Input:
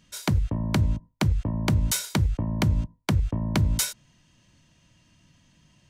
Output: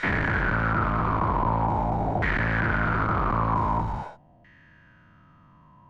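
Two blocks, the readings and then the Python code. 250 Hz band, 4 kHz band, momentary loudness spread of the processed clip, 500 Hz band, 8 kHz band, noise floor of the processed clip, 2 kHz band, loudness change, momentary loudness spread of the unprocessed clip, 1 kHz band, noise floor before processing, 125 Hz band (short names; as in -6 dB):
-1.0 dB, -11.0 dB, 2 LU, +6.0 dB, under -25 dB, -55 dBFS, +11.5 dB, +1.0 dB, 3 LU, +14.0 dB, -63 dBFS, -3.0 dB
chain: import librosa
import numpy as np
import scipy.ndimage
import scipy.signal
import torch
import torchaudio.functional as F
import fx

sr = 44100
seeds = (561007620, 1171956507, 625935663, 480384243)

y = fx.spec_dilate(x, sr, span_ms=480)
y = fx.tube_stage(y, sr, drive_db=25.0, bias=0.45)
y = fx.filter_lfo_lowpass(y, sr, shape='saw_down', hz=0.45, low_hz=700.0, high_hz=1900.0, q=7.7)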